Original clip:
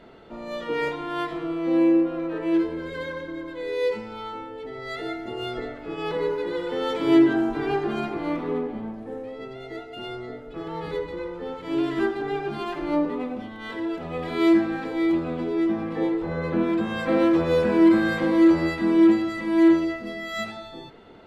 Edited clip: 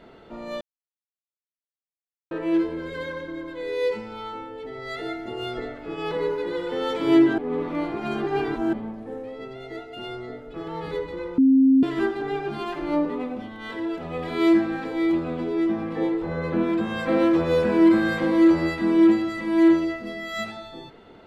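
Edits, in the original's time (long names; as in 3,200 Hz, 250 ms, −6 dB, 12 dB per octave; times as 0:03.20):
0:00.61–0:02.31: silence
0:07.38–0:08.73: reverse
0:11.38–0:11.83: beep over 266 Hz −12.5 dBFS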